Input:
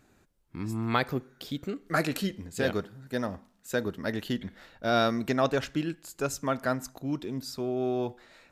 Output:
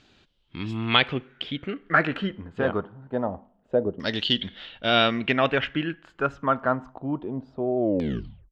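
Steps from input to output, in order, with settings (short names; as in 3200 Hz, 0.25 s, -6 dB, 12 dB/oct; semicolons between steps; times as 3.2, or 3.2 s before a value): tape stop at the end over 0.75 s; bell 3100 Hz +13.5 dB 0.52 oct; LFO low-pass saw down 0.25 Hz 560–4900 Hz; gain +2 dB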